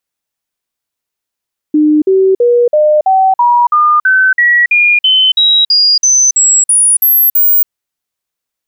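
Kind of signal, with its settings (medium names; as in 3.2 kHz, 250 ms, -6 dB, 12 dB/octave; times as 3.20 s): stepped sine 303 Hz up, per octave 3, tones 18, 0.28 s, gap 0.05 s -5 dBFS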